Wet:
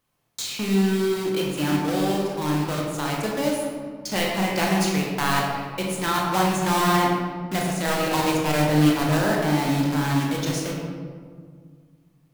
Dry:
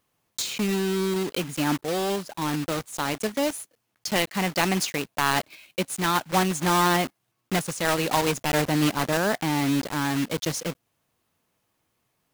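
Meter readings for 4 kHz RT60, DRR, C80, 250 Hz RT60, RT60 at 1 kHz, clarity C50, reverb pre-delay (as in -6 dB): 0.95 s, -2.0 dB, 2.5 dB, 2.6 s, 1.8 s, 0.5 dB, 18 ms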